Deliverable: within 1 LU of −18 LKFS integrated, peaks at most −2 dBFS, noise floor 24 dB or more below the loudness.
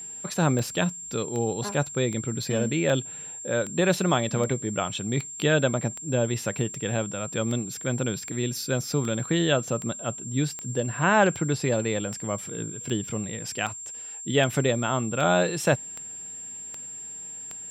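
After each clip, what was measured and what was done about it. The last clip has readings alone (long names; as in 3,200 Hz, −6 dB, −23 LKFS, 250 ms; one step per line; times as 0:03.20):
number of clicks 23; interfering tone 7,400 Hz; level of the tone −36 dBFS; integrated loudness −27.0 LKFS; sample peak −7.5 dBFS; target loudness −18.0 LKFS
→ click removal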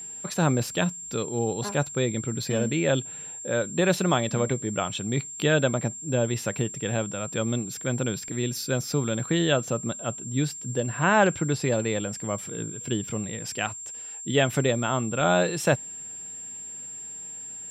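number of clicks 0; interfering tone 7,400 Hz; level of the tone −36 dBFS
→ notch filter 7,400 Hz, Q 30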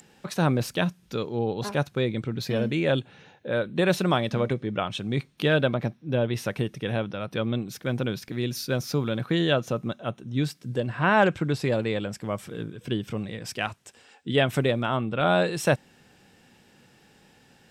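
interfering tone none found; integrated loudness −27.0 LKFS; sample peak −8.0 dBFS; target loudness −18.0 LKFS
→ level +9 dB
brickwall limiter −2 dBFS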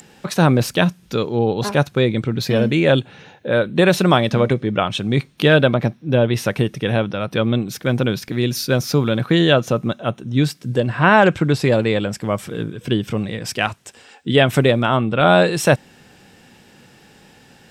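integrated loudness −18.0 LKFS; sample peak −2.0 dBFS; background noise floor −50 dBFS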